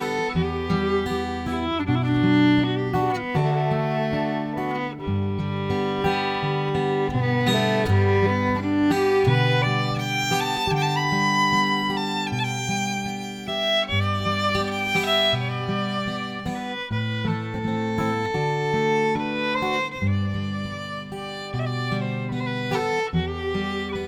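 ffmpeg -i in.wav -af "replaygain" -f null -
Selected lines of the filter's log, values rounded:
track_gain = +4.3 dB
track_peak = 0.295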